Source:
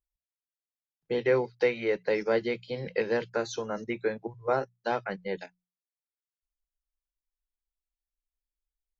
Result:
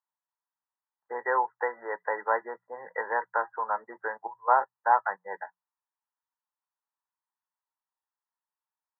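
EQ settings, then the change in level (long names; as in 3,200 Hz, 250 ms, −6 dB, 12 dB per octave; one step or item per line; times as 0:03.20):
high-pass with resonance 930 Hz, resonance Q 5.4
linear-phase brick-wall low-pass 2,000 Hz
+1.5 dB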